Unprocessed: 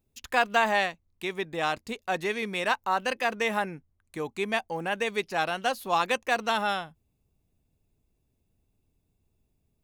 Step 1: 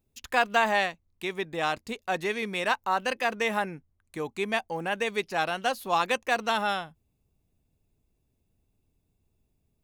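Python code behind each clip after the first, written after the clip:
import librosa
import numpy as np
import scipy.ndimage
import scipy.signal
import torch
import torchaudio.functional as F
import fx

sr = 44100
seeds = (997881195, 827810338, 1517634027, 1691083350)

y = x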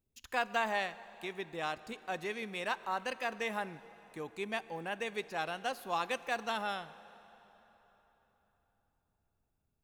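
y = fx.rev_plate(x, sr, seeds[0], rt60_s=4.0, hf_ratio=0.8, predelay_ms=0, drr_db=15.5)
y = y * 10.0 ** (-9.0 / 20.0)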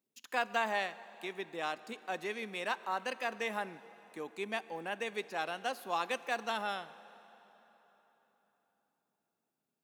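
y = scipy.signal.sosfilt(scipy.signal.butter(4, 190.0, 'highpass', fs=sr, output='sos'), x)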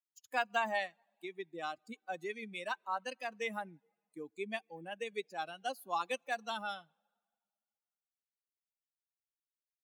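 y = fx.bin_expand(x, sr, power=2.0)
y = y * 10.0 ** (2.0 / 20.0)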